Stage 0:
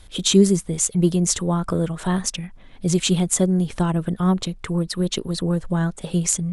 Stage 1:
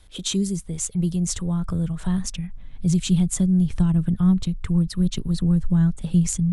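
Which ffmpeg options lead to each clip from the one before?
-filter_complex "[0:a]acrossover=split=270|3000[a][b][c];[b]acompressor=threshold=-27dB:ratio=6[d];[a][d][c]amix=inputs=3:normalize=0,asubboost=boost=8.5:cutoff=160,volume=-6.5dB"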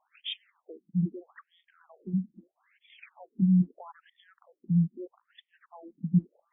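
-af "afftfilt=real='re*between(b*sr/1024,210*pow(2600/210,0.5+0.5*sin(2*PI*0.78*pts/sr))/1.41,210*pow(2600/210,0.5+0.5*sin(2*PI*0.78*pts/sr))*1.41)':imag='im*between(b*sr/1024,210*pow(2600/210,0.5+0.5*sin(2*PI*0.78*pts/sr))/1.41,210*pow(2600/210,0.5+0.5*sin(2*PI*0.78*pts/sr))*1.41)':win_size=1024:overlap=0.75,volume=-2.5dB"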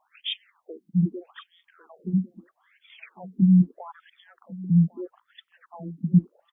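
-af "aecho=1:1:1100:0.1,volume=5.5dB"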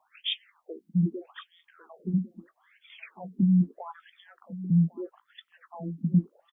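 -filter_complex "[0:a]acrossover=split=210|670[a][b][c];[a]acompressor=threshold=-27dB:ratio=6[d];[d][b][c]amix=inputs=3:normalize=0,asplit=2[e][f];[f]adelay=18,volume=-13.5dB[g];[e][g]amix=inputs=2:normalize=0"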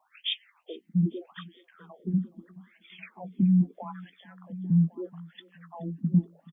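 -af "aecho=1:1:425|850|1275:0.075|0.0277|0.0103"

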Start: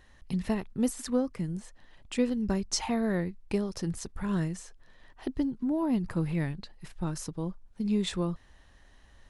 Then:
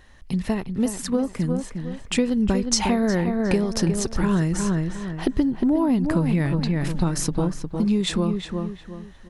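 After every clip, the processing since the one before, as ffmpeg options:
-filter_complex "[0:a]dynaudnorm=f=360:g=11:m=9dB,asplit=2[a][b];[b]adelay=358,lowpass=f=2.7k:p=1,volume=-7.5dB,asplit=2[c][d];[d]adelay=358,lowpass=f=2.7k:p=1,volume=0.33,asplit=2[e][f];[f]adelay=358,lowpass=f=2.7k:p=1,volume=0.33,asplit=2[g][h];[h]adelay=358,lowpass=f=2.7k:p=1,volume=0.33[i];[a][c][e][g][i]amix=inputs=5:normalize=0,acompressor=threshold=-24dB:ratio=6,volume=6.5dB"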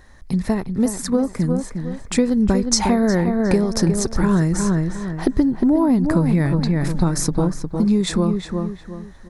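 -af "equalizer=f=2.9k:w=3.2:g=-13,volume=4dB"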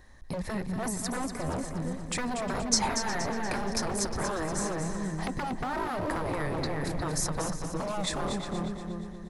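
-filter_complex "[0:a]bandreject=f=1.4k:w=12,acrossover=split=710[a][b];[a]aeval=exprs='0.0891*(abs(mod(val(0)/0.0891+3,4)-2)-1)':c=same[c];[c][b]amix=inputs=2:normalize=0,aecho=1:1:237|474|711|948|1185:0.398|0.175|0.0771|0.0339|0.0149,volume=-6.5dB"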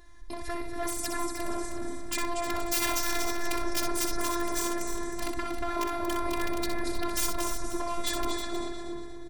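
-af "aeval=exprs='(mod(13.3*val(0)+1,2)-1)/13.3':c=same,afftfilt=real='hypot(re,im)*cos(PI*b)':imag='0':win_size=512:overlap=0.75,aecho=1:1:63|314:0.473|0.299,volume=4dB"

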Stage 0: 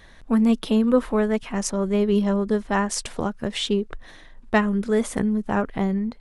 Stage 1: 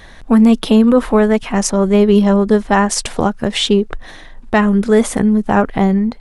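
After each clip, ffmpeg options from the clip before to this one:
-af "equalizer=f=770:t=o:w=0.32:g=3.5,alimiter=level_in=11dB:limit=-1dB:release=50:level=0:latency=1,volume=-1dB"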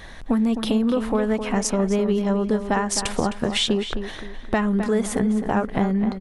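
-filter_complex "[0:a]acompressor=threshold=-17dB:ratio=6,asplit=2[a][b];[b]adelay=260,lowpass=f=3.8k:p=1,volume=-9dB,asplit=2[c][d];[d]adelay=260,lowpass=f=3.8k:p=1,volume=0.37,asplit=2[e][f];[f]adelay=260,lowpass=f=3.8k:p=1,volume=0.37,asplit=2[g][h];[h]adelay=260,lowpass=f=3.8k:p=1,volume=0.37[i];[c][e][g][i]amix=inputs=4:normalize=0[j];[a][j]amix=inputs=2:normalize=0,volume=-1.5dB"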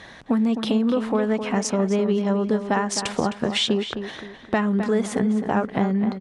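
-af "highpass=110,lowpass=7.3k"

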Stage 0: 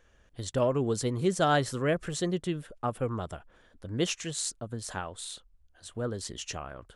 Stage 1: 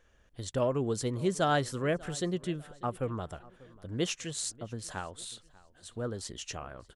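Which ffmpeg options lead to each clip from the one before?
-filter_complex "[0:a]asplit=2[a][b];[b]adelay=592,lowpass=f=4.7k:p=1,volume=-22dB,asplit=2[c][d];[d]adelay=592,lowpass=f=4.7k:p=1,volume=0.41,asplit=2[e][f];[f]adelay=592,lowpass=f=4.7k:p=1,volume=0.41[g];[a][c][e][g]amix=inputs=4:normalize=0,volume=-2.5dB"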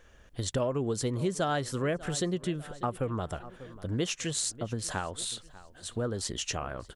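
-af "acompressor=threshold=-37dB:ratio=3,volume=8dB"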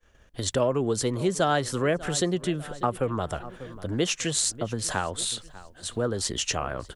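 -filter_complex "[0:a]agate=range=-33dB:threshold=-49dB:ratio=3:detection=peak,acrossover=split=220|2600[a][b][c];[a]asoftclip=type=tanh:threshold=-37.5dB[d];[d][b][c]amix=inputs=3:normalize=0,volume=6dB"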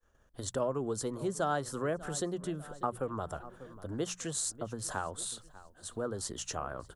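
-af "highshelf=f=2k:t=q:w=1.5:g=-12.5,bandreject=f=60:t=h:w=6,bandreject=f=120:t=h:w=6,bandreject=f=180:t=h:w=6,aexciter=amount=4.1:drive=3.9:freq=2.9k,volume=-9dB"

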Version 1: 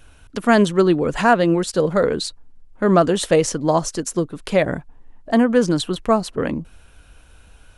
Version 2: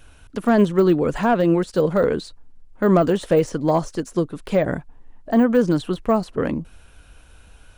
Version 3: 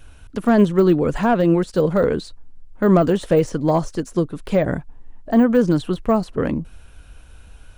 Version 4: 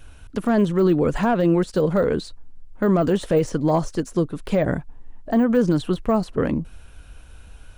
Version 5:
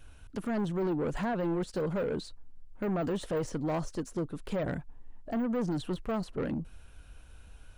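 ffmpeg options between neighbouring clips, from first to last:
-af "deesser=0.95"
-af "lowshelf=f=170:g=5.5"
-af "alimiter=limit=-9.5dB:level=0:latency=1:release=62"
-af "asoftclip=type=tanh:threshold=-18.5dB,volume=-8dB"

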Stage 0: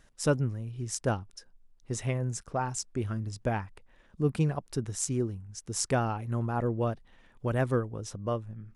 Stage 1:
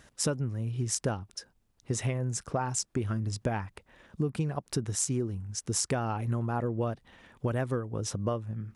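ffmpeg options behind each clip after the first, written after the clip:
-af "acompressor=threshold=-33dB:ratio=12,highpass=58,volume=7dB"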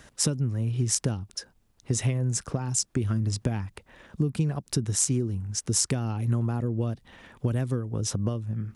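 -filter_complex "[0:a]acrossover=split=320|3000[a][b][c];[b]acompressor=threshold=-43dB:ratio=6[d];[a][d][c]amix=inputs=3:normalize=0,volume=5.5dB"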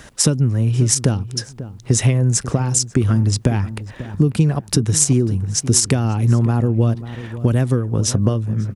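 -filter_complex "[0:a]asplit=2[a][b];[b]adelay=542,lowpass=f=1.3k:p=1,volume=-13.5dB,asplit=2[c][d];[d]adelay=542,lowpass=f=1.3k:p=1,volume=0.25,asplit=2[e][f];[f]adelay=542,lowpass=f=1.3k:p=1,volume=0.25[g];[a][c][e][g]amix=inputs=4:normalize=0,alimiter=level_in=11.5dB:limit=-1dB:release=50:level=0:latency=1,volume=-1dB"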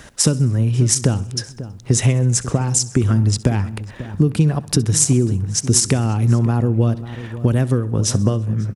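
-af "aecho=1:1:65|130|195|260|325:0.1|0.059|0.0348|0.0205|0.0121"

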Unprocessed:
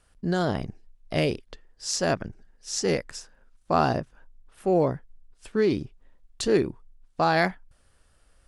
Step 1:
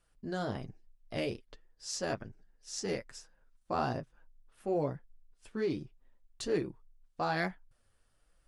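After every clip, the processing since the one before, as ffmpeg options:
-af "flanger=delay=5.6:depth=4.2:regen=-25:speed=1.2:shape=triangular,volume=-6.5dB"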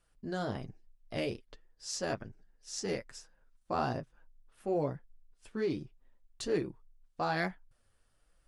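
-af anull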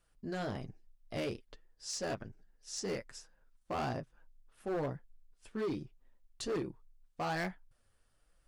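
-af "asoftclip=type=hard:threshold=-30.5dB,volume=-1dB"

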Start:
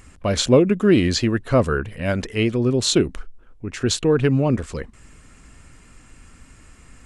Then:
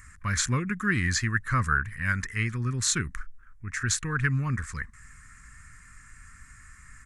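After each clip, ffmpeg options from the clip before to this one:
-af "firequalizer=gain_entry='entry(110,0);entry(310,-16);entry(630,-26);entry(1100,2);entry(1800,10);entry(2900,-11);entry(6400,3)':delay=0.05:min_phase=1,volume=-3.5dB"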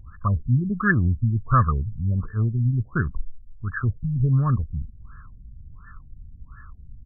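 -af "aecho=1:1:1.7:0.31,acontrast=87,afftfilt=real='re*lt(b*sr/1024,270*pow(1800/270,0.5+0.5*sin(2*PI*1.4*pts/sr)))':imag='im*lt(b*sr/1024,270*pow(1800/270,0.5+0.5*sin(2*PI*1.4*pts/sr)))':win_size=1024:overlap=0.75"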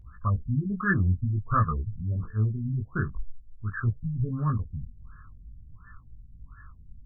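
-af "flanger=delay=17.5:depth=3.7:speed=0.5,volume=-1.5dB"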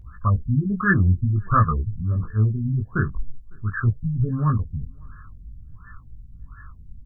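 -filter_complex "[0:a]asplit=2[a][b];[b]adelay=553.9,volume=-30dB,highshelf=f=4k:g=-12.5[c];[a][c]amix=inputs=2:normalize=0,volume=6dB"

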